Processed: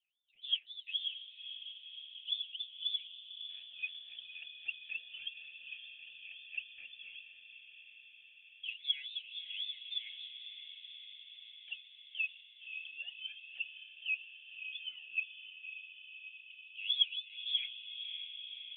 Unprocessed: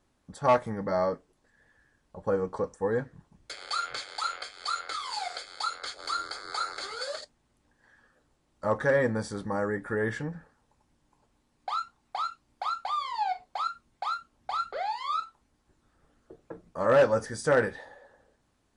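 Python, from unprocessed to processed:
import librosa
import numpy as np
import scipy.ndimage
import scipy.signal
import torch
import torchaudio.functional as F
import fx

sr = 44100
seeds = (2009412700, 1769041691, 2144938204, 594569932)

y = fx.wah_lfo(x, sr, hz=3.7, low_hz=350.0, high_hz=1400.0, q=14.0)
y = fx.echo_diffused(y, sr, ms=564, feedback_pct=73, wet_db=-9.0)
y = fx.freq_invert(y, sr, carrier_hz=3900)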